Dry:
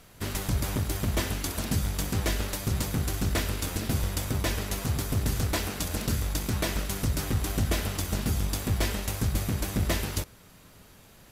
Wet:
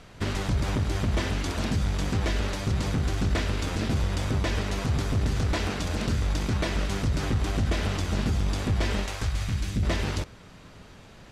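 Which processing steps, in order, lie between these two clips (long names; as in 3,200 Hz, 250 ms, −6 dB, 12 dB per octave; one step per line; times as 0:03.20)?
0:09.05–0:09.82: parametric band 120 Hz → 970 Hz −14 dB 2.5 octaves
brickwall limiter −23 dBFS, peak gain reduction 6 dB
high-frequency loss of the air 94 metres
level +6 dB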